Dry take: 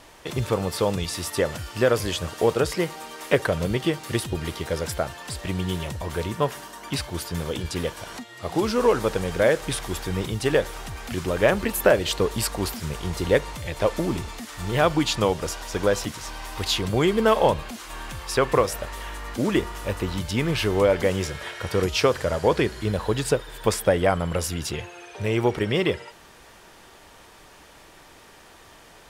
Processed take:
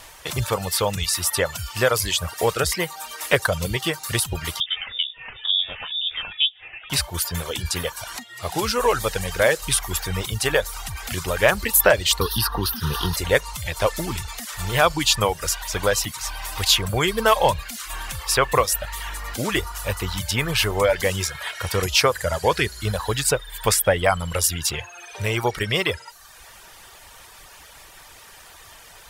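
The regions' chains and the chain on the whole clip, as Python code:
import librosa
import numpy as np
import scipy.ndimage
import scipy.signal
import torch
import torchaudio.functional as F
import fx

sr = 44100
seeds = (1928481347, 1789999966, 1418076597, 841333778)

y = fx.chain(x, sr, fx.harmonic_tremolo(hz=2.1, depth_pct=100, crossover_hz=580.0),
    fx.freq_invert(carrier_hz=3600), at=(4.6, 6.9))
y = fx.chain(y, sr, fx.peak_eq(hz=420.0, db=8.5, octaves=1.9),
    fx.fixed_phaser(hz=2200.0, stages=6),
    fx.band_squash(depth_pct=100), at=(12.21, 13.16))
y = fx.high_shelf(y, sr, hz=9200.0, db=9.5)
y = fx.dereverb_blind(y, sr, rt60_s=0.76)
y = fx.peak_eq(y, sr, hz=280.0, db=-12.0, octaves=1.9)
y = y * librosa.db_to_amplitude(6.5)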